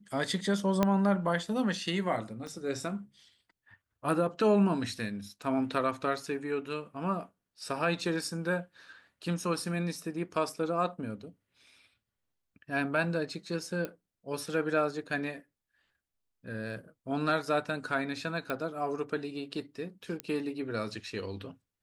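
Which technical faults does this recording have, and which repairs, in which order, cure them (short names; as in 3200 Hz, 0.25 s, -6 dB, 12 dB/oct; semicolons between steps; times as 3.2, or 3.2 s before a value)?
0.83 pop -12 dBFS
2.47 pop -29 dBFS
13.85 pop -22 dBFS
18.5 pop -20 dBFS
20.2 pop -19 dBFS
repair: de-click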